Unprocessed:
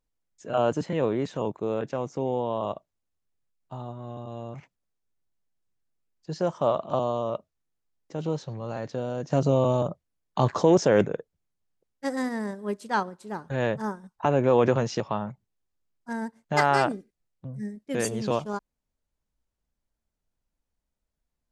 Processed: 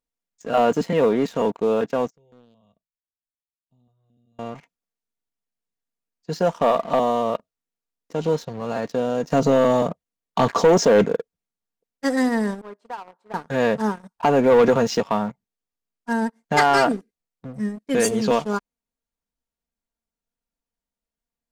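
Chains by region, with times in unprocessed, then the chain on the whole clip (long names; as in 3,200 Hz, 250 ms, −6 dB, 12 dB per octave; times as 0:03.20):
0:02.10–0:04.39: guitar amp tone stack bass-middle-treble 10-0-1 + notch on a step sequencer 4.5 Hz 250–2,900 Hz
0:12.61–0:13.34: resonant band-pass 860 Hz, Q 1.7 + downward compressor 8 to 1, threshold −38 dBFS
whole clip: low-shelf EQ 97 Hz −10.5 dB; comb filter 4.3 ms, depth 46%; leveller curve on the samples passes 2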